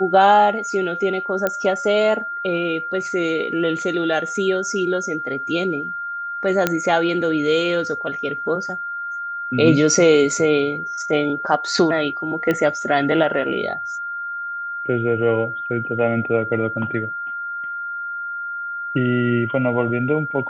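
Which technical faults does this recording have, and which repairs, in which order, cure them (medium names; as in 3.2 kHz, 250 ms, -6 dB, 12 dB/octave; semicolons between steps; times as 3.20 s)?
whine 1.4 kHz -25 dBFS
1.47 s: pop -7 dBFS
6.67 s: pop -3 dBFS
12.51 s: pop -9 dBFS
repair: de-click; band-stop 1.4 kHz, Q 30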